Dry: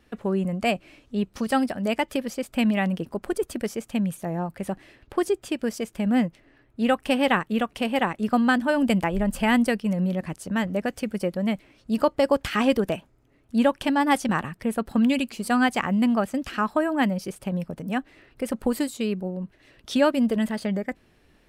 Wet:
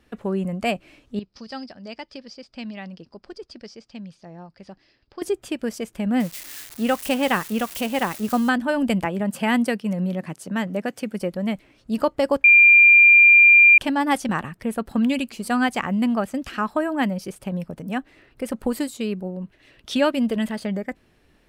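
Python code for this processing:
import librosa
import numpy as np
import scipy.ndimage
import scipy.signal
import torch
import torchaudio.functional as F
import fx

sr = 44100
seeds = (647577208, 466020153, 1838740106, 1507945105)

y = fx.ladder_lowpass(x, sr, hz=5200.0, resonance_pct=80, at=(1.19, 5.22))
y = fx.crossing_spikes(y, sr, level_db=-24.5, at=(6.2, 8.49))
y = fx.highpass(y, sr, hz=120.0, slope=24, at=(9.05, 11.19))
y = fx.peak_eq(y, sr, hz=2900.0, db=4.0, octaves=1.1, at=(19.41, 20.53))
y = fx.edit(y, sr, fx.bleep(start_s=12.44, length_s=1.34, hz=2390.0, db=-8.0), tone=tone)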